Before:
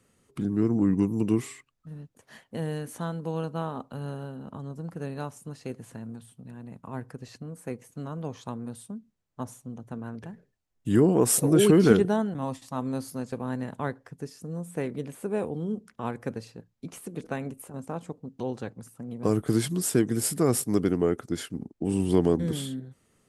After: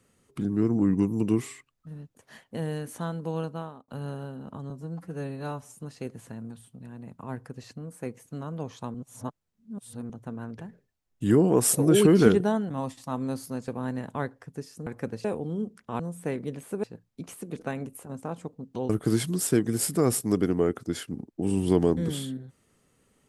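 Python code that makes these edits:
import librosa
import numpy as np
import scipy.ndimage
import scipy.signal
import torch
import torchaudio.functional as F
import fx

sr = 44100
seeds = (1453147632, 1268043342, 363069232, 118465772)

y = fx.edit(x, sr, fx.fade_out_span(start_s=3.42, length_s=0.46),
    fx.stretch_span(start_s=4.7, length_s=0.71, factor=1.5),
    fx.reverse_span(start_s=8.59, length_s=1.15),
    fx.swap(start_s=14.51, length_s=0.84, other_s=16.1, other_length_s=0.38),
    fx.cut(start_s=18.54, length_s=0.78), tone=tone)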